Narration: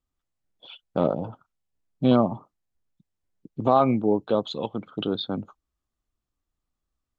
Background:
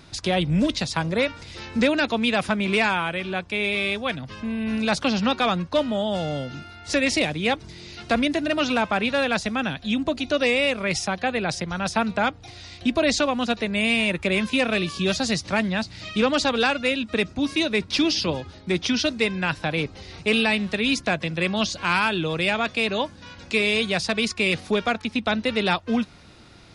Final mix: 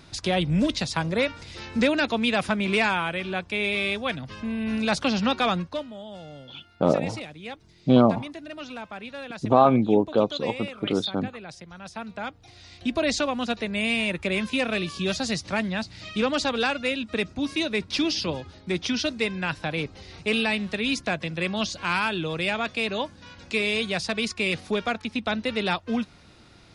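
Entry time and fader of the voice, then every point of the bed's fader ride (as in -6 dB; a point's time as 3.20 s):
5.85 s, +2.0 dB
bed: 5.59 s -1.5 dB
5.90 s -15 dB
11.82 s -15 dB
12.97 s -3.5 dB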